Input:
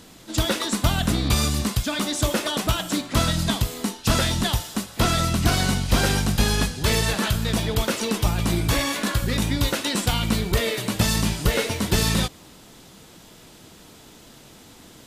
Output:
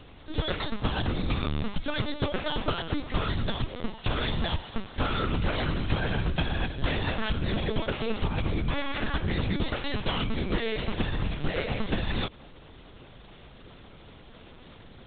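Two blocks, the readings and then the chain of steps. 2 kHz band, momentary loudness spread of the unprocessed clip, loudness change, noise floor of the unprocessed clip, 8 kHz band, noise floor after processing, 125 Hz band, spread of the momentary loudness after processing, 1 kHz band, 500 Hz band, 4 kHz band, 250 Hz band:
−6.0 dB, 4 LU, −7.5 dB, −48 dBFS, below −40 dB, −50 dBFS, −7.0 dB, 21 LU, −6.0 dB, −5.5 dB, −9.0 dB, −7.0 dB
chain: downward compressor, threshold −23 dBFS, peak gain reduction 10 dB
high-frequency loss of the air 60 metres
linear-prediction vocoder at 8 kHz pitch kept

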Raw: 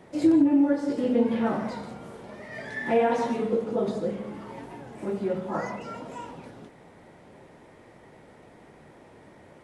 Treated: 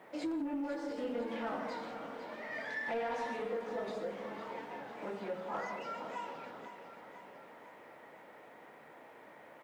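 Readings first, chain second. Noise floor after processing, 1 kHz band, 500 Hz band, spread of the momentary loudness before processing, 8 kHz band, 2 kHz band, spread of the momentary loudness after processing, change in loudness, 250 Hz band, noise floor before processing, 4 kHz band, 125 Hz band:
−56 dBFS, −7.5 dB, −11.5 dB, 20 LU, can't be measured, −4.5 dB, 18 LU, −13.5 dB, −16.5 dB, −52 dBFS, −5.0 dB, −17.5 dB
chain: high-pass filter 270 Hz 6 dB per octave
notch filter 380 Hz, Q 12
mid-hump overdrive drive 15 dB, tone 3,900 Hz, clips at −13.5 dBFS
downward compressor 2 to 1, threshold −31 dBFS, peak gain reduction 7.5 dB
low-pass that shuts in the quiet parts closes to 2,400 Hz, open at −25.5 dBFS
bit reduction 11 bits
repeating echo 502 ms, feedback 57%, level −11 dB
level −8.5 dB

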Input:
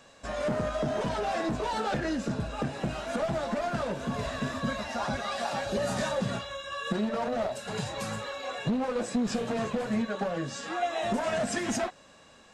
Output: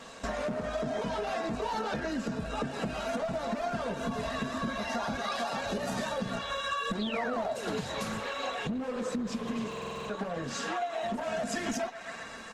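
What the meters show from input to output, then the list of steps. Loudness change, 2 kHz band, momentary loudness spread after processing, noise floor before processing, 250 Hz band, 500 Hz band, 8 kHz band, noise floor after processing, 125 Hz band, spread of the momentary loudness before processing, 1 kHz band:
−2.5 dB, −0.5 dB, 3 LU, −55 dBFS, −3.0 dB, −2.5 dB, −2.5 dB, −43 dBFS, −5.0 dB, 5 LU, −1.5 dB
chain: dynamic equaliser 8,100 Hz, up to −4 dB, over −56 dBFS, Q 3.3
comb filter 4.4 ms, depth 41%
healed spectral selection 0:08.94–0:09.67, 450–2,000 Hz both
soft clipping −16 dBFS, distortion −27 dB
feedback echo with a band-pass in the loop 129 ms, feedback 77%, band-pass 1,700 Hz, level −14 dB
downward compressor 10 to 1, threshold −39 dBFS, peak gain reduction 16 dB
low-shelf EQ 63 Hz −4.5 dB
sound drawn into the spectrogram fall, 0:07.00–0:07.79, 230–4,200 Hz −49 dBFS
buffer that repeats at 0:09.68, samples 2,048, times 8
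level +9 dB
Opus 16 kbit/s 48,000 Hz

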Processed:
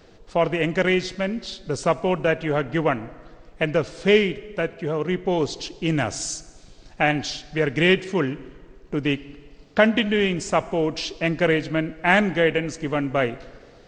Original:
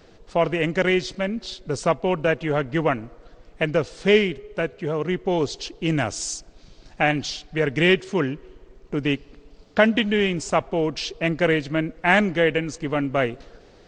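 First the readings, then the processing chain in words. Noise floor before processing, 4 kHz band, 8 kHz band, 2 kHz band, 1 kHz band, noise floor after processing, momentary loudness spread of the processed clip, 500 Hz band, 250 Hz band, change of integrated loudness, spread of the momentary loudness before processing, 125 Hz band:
−51 dBFS, 0.0 dB, 0.0 dB, 0.0 dB, 0.0 dB, −49 dBFS, 10 LU, 0.0 dB, 0.0 dB, 0.0 dB, 10 LU, 0.0 dB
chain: dense smooth reverb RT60 1.6 s, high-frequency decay 0.8×, DRR 17 dB

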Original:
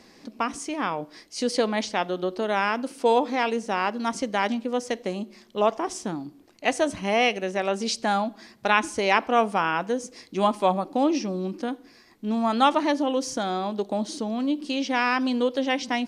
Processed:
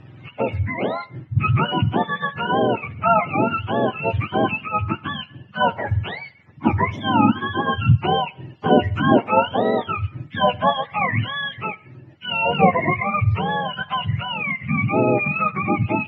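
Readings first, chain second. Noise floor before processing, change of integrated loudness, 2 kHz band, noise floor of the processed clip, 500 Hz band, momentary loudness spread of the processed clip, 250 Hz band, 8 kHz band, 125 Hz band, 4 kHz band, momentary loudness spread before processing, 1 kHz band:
−54 dBFS, +4.5 dB, +4.5 dB, −47 dBFS, +2.5 dB, 9 LU, +3.5 dB, below −30 dB, +18.5 dB, +3.0 dB, 10 LU, +4.5 dB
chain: frequency axis turned over on the octave scale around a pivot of 790 Hz
high-frequency loss of the air 150 metres
level +6.5 dB

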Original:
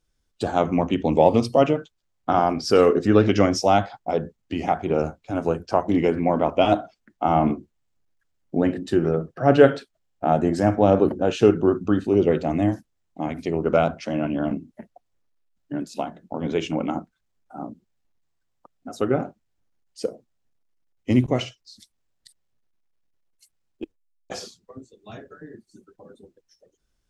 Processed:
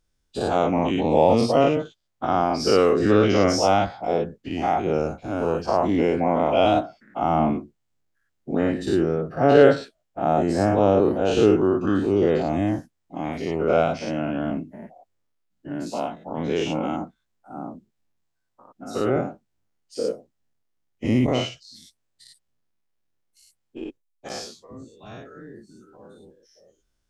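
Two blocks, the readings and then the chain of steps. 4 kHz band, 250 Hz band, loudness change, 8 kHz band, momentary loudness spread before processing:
+2.0 dB, −0.5 dB, 0.0 dB, can't be measured, 18 LU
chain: every bin's largest magnitude spread in time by 120 ms
level −5 dB

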